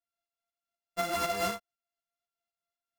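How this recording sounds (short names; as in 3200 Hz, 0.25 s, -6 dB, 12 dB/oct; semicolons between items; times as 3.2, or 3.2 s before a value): a buzz of ramps at a fixed pitch in blocks of 64 samples; tremolo saw up 4 Hz, depth 55%; a shimmering, thickened sound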